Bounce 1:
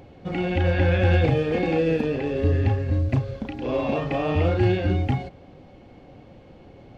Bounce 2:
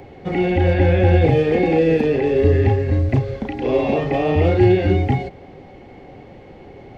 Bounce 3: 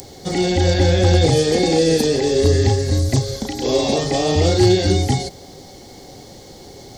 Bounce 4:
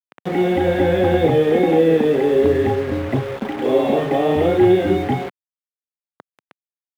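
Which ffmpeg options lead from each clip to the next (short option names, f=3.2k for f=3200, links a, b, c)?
-filter_complex "[0:a]equalizer=f=400:t=o:w=0.33:g=8,equalizer=f=800:t=o:w=0.33:g=6,equalizer=f=2k:t=o:w=0.33:g=9,acrossover=split=200|810|1900[a][b][c][d];[c]acompressor=threshold=-42dB:ratio=6[e];[d]alimiter=level_in=6.5dB:limit=-24dB:level=0:latency=1:release=24,volume=-6.5dB[f];[a][b][e][f]amix=inputs=4:normalize=0,volume=4.5dB"
-af "aexciter=amount=14.7:drive=8.5:freq=4.1k,volume=6dB,asoftclip=hard,volume=-6dB"
-filter_complex "[0:a]aresample=8000,aresample=44100,acrusher=bits=4:mix=0:aa=0.000001,acrossover=split=150 2600:gain=0.126 1 0.112[a][b][c];[a][b][c]amix=inputs=3:normalize=0,volume=2dB"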